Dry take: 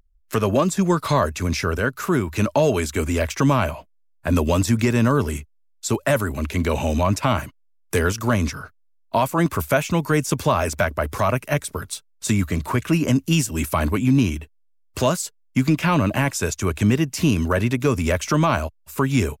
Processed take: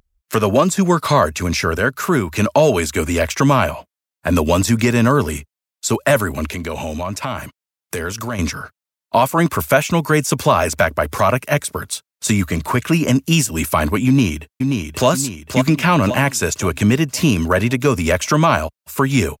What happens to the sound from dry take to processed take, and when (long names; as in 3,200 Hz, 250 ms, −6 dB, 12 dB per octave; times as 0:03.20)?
0:06.46–0:08.39: downward compressor 2.5 to 1, threshold −28 dBFS
0:14.07–0:15.08: delay throw 530 ms, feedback 45%, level −5 dB
whole clip: high-pass filter 130 Hz 6 dB per octave; parametric band 320 Hz −2.5 dB 0.77 octaves; level +6 dB